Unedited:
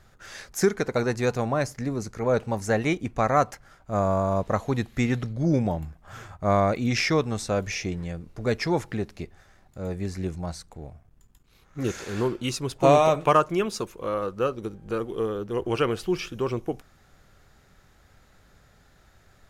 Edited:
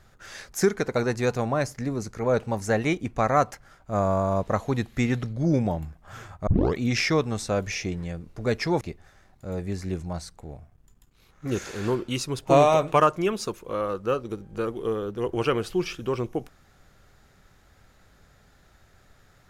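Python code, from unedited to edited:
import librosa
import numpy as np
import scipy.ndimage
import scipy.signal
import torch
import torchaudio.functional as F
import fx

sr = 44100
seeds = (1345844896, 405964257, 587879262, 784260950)

y = fx.edit(x, sr, fx.tape_start(start_s=6.47, length_s=0.31),
    fx.cut(start_s=8.81, length_s=0.33), tone=tone)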